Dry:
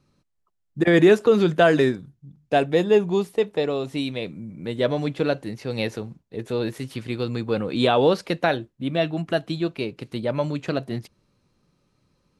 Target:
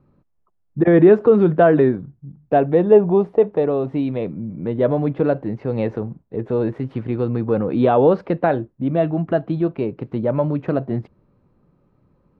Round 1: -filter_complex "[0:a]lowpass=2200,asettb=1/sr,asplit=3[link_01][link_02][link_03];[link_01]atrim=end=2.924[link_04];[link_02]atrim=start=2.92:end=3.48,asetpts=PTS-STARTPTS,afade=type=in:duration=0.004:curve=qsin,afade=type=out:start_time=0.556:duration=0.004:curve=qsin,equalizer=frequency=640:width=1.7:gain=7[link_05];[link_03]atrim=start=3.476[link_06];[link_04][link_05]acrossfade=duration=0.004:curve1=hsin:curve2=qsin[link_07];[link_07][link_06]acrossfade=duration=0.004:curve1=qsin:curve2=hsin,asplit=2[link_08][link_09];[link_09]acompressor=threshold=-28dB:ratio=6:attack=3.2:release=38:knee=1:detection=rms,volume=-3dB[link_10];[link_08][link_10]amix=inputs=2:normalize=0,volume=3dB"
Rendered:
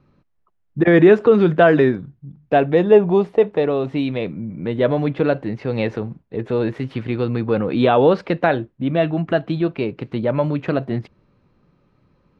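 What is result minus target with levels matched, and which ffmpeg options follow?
2,000 Hz band +6.5 dB
-filter_complex "[0:a]lowpass=1100,asettb=1/sr,asplit=3[link_01][link_02][link_03];[link_01]atrim=end=2.924[link_04];[link_02]atrim=start=2.92:end=3.48,asetpts=PTS-STARTPTS,afade=type=in:duration=0.004:curve=qsin,afade=type=out:start_time=0.556:duration=0.004:curve=qsin,equalizer=frequency=640:width=1.7:gain=7[link_05];[link_03]atrim=start=3.476[link_06];[link_04][link_05]acrossfade=duration=0.004:curve1=hsin:curve2=qsin[link_07];[link_07][link_06]acrossfade=duration=0.004:curve1=qsin:curve2=hsin,asplit=2[link_08][link_09];[link_09]acompressor=threshold=-28dB:ratio=6:attack=3.2:release=38:knee=1:detection=rms,volume=-3dB[link_10];[link_08][link_10]amix=inputs=2:normalize=0,volume=3dB"

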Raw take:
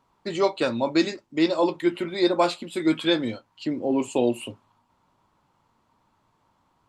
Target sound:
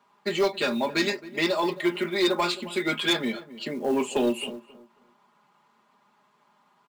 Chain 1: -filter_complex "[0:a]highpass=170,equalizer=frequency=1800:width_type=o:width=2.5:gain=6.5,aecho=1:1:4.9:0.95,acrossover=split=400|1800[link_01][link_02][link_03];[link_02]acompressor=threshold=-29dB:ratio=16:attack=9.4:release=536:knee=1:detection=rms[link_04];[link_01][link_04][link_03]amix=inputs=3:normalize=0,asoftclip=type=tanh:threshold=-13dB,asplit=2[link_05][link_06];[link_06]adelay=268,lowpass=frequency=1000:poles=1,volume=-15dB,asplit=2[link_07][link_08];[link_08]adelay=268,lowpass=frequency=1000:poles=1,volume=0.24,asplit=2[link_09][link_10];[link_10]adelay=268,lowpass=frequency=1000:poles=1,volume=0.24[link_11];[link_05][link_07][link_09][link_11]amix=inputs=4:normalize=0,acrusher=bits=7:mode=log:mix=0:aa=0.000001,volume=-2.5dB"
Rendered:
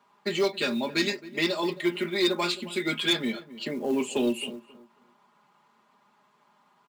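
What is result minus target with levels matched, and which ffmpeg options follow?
downward compressor: peak gain reduction +9 dB
-filter_complex "[0:a]highpass=170,equalizer=frequency=1800:width_type=o:width=2.5:gain=6.5,aecho=1:1:4.9:0.95,acrossover=split=400|1800[link_01][link_02][link_03];[link_02]acompressor=threshold=-19.5dB:ratio=16:attack=9.4:release=536:knee=1:detection=rms[link_04];[link_01][link_04][link_03]amix=inputs=3:normalize=0,asoftclip=type=tanh:threshold=-13dB,asplit=2[link_05][link_06];[link_06]adelay=268,lowpass=frequency=1000:poles=1,volume=-15dB,asplit=2[link_07][link_08];[link_08]adelay=268,lowpass=frequency=1000:poles=1,volume=0.24,asplit=2[link_09][link_10];[link_10]adelay=268,lowpass=frequency=1000:poles=1,volume=0.24[link_11];[link_05][link_07][link_09][link_11]amix=inputs=4:normalize=0,acrusher=bits=7:mode=log:mix=0:aa=0.000001,volume=-2.5dB"

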